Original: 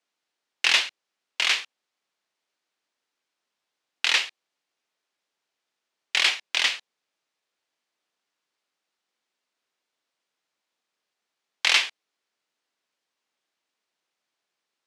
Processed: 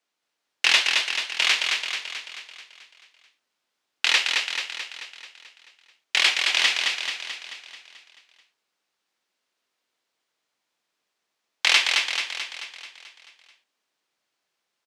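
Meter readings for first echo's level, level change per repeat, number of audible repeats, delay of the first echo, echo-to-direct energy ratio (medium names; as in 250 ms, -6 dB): -4.0 dB, -5.0 dB, 7, 218 ms, -2.5 dB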